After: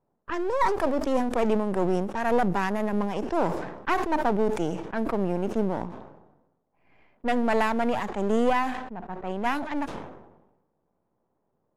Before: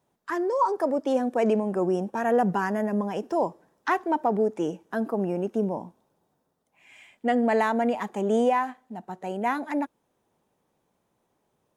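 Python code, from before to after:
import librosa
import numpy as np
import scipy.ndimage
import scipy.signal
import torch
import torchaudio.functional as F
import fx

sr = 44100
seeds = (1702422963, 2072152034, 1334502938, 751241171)

y = np.where(x < 0.0, 10.0 ** (-12.0 / 20.0) * x, x)
y = fx.env_lowpass(y, sr, base_hz=1000.0, full_db=-25.0)
y = fx.sustainer(y, sr, db_per_s=55.0)
y = F.gain(torch.from_numpy(y), 2.0).numpy()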